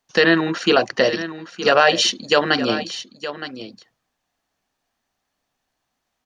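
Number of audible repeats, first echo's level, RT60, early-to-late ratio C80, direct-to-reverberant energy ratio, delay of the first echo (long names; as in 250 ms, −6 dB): 1, −12.5 dB, no reverb audible, no reverb audible, no reverb audible, 917 ms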